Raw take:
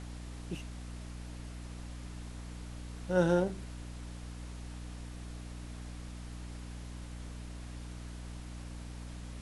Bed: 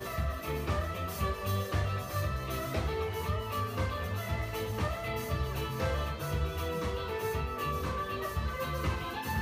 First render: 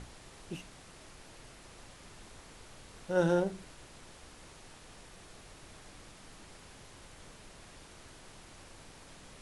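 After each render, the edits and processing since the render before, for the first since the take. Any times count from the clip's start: hum notches 60/120/180/240/300 Hz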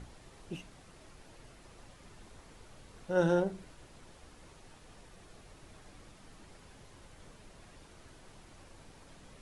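noise reduction 6 dB, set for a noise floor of -54 dBFS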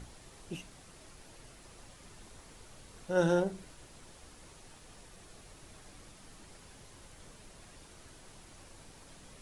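treble shelf 4.9 kHz +8.5 dB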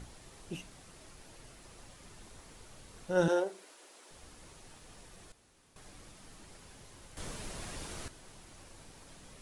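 3.28–4.11 s: high-pass 330 Hz 24 dB/octave; 5.32–5.76 s: room tone; 7.17–8.08 s: gain +11 dB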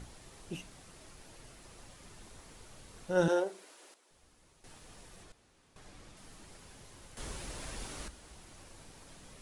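3.94–4.64 s: gain -11 dB; 5.23–6.17 s: treble shelf 9.1 kHz -9.5 dB; 7.15–8.37 s: frequency shift -65 Hz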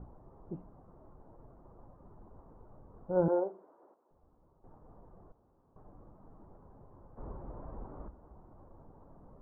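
steep low-pass 1.1 kHz 36 dB/octave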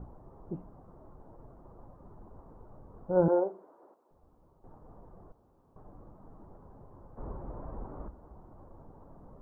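trim +3.5 dB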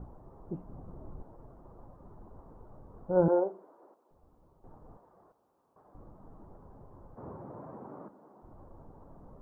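0.69–1.23 s: bass shelf 410 Hz +9 dB; 4.97–5.95 s: high-pass 730 Hz 6 dB/octave; 7.14–8.42 s: high-pass 85 Hz -> 210 Hz 24 dB/octave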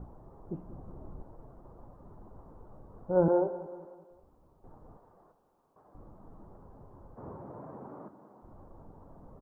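feedback delay 190 ms, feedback 50%, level -16 dB; spring tank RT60 1.1 s, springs 45 ms, DRR 16 dB

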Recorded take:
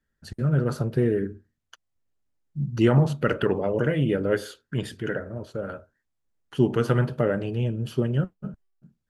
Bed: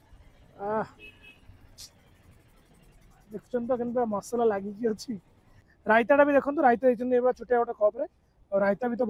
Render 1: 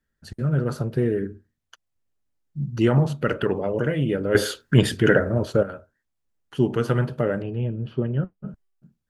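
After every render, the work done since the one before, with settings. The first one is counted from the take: 4.35–5.63 s: gain +12 dB; 7.42–8.48 s: distance through air 360 m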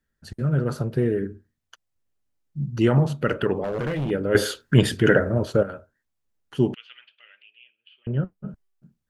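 3.64–4.11 s: hard clipper -23 dBFS; 6.74–8.07 s: Butterworth band-pass 2.8 kHz, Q 2.7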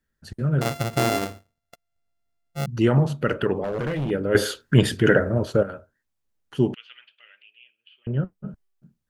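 0.61–2.66 s: sorted samples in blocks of 64 samples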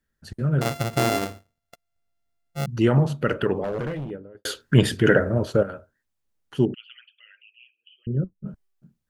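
3.63–4.45 s: studio fade out; 6.65–8.46 s: resonances exaggerated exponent 2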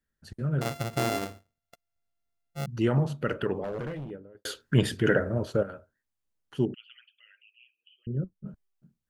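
trim -6 dB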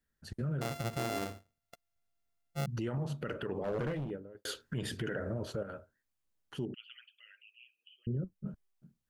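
compression 6:1, threshold -28 dBFS, peak gain reduction 11.5 dB; peak limiter -27.5 dBFS, peak gain reduction 10 dB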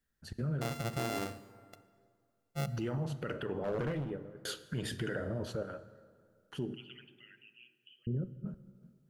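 plate-style reverb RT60 2.1 s, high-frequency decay 0.6×, DRR 13.5 dB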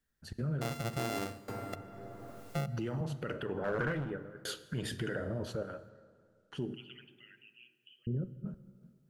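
1.48–3.01 s: three bands compressed up and down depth 100%; 3.57–4.44 s: peaking EQ 1.5 kHz +12.5 dB 0.51 oct; 5.89–6.59 s: low-pass 7.6 kHz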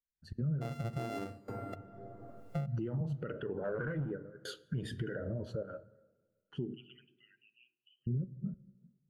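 compression, threshold -36 dBFS, peak gain reduction 6.5 dB; spectral contrast expander 1.5:1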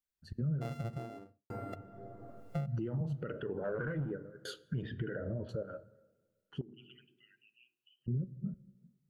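0.67–1.50 s: studio fade out; 4.82–5.49 s: low-pass 3.1 kHz 24 dB/octave; 6.61–8.08 s: compression 12:1, threshold -49 dBFS

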